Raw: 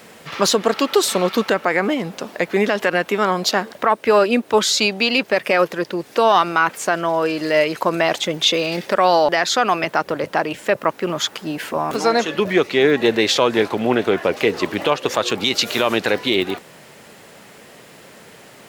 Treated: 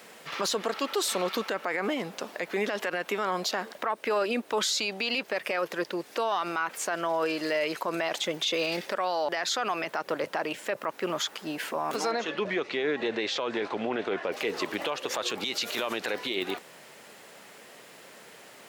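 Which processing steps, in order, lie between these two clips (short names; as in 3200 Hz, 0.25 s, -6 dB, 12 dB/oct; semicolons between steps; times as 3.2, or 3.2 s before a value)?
HPF 390 Hz 6 dB/oct; limiter -14 dBFS, peak gain reduction 10.5 dB; 12.11–14.32 air absorption 100 m; gain -5 dB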